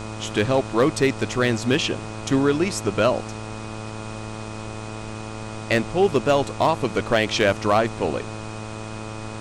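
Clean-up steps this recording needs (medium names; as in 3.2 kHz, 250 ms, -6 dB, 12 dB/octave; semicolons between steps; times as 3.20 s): clip repair -10 dBFS; de-hum 108.9 Hz, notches 13; band-stop 2.5 kHz, Q 30; noise print and reduce 30 dB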